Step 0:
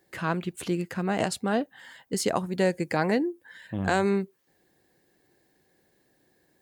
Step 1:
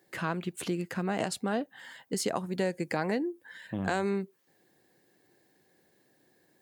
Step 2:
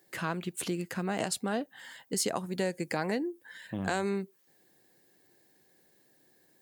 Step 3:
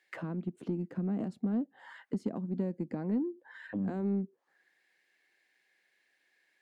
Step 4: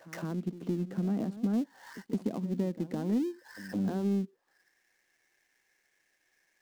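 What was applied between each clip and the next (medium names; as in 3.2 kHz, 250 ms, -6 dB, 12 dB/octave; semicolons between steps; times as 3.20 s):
high-pass 110 Hz; compression 2:1, threshold -30 dBFS, peak gain reduction 6.5 dB
treble shelf 4.4 kHz +7 dB; trim -1.5 dB
auto-wah 230–2400 Hz, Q 2.7, down, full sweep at -32 dBFS; in parallel at -3 dB: saturation -34.5 dBFS, distortion -14 dB; on the sum: trim +2 dB
dead-time distortion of 0.12 ms; pre-echo 163 ms -15 dB; trim +2 dB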